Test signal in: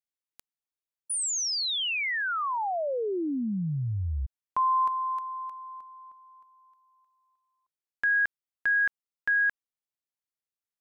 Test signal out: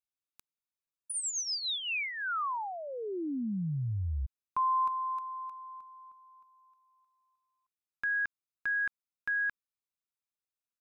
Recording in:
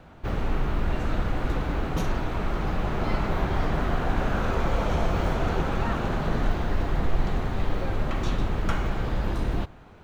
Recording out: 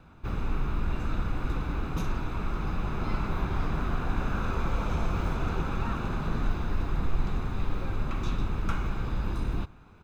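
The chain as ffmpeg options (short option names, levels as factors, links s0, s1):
-af "aecho=1:1:0.8:0.45,volume=0.501"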